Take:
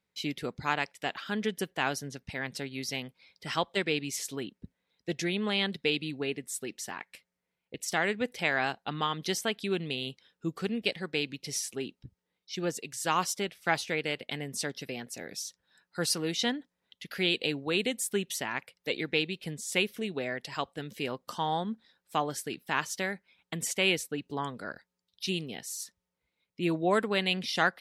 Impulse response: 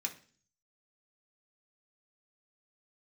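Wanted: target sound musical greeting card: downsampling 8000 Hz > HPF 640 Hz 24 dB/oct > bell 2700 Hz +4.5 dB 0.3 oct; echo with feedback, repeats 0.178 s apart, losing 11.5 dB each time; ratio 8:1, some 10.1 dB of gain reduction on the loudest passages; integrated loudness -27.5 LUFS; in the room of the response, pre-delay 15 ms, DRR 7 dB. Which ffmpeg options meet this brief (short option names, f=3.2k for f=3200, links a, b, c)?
-filter_complex "[0:a]acompressor=threshold=-32dB:ratio=8,aecho=1:1:178|356|534:0.266|0.0718|0.0194,asplit=2[a][b];[1:a]atrim=start_sample=2205,adelay=15[c];[b][c]afir=irnorm=-1:irlink=0,volume=-7.5dB[d];[a][d]amix=inputs=2:normalize=0,aresample=8000,aresample=44100,highpass=f=640:w=0.5412,highpass=f=640:w=1.3066,equalizer=f=2.7k:t=o:w=0.3:g=4.5,volume=11.5dB"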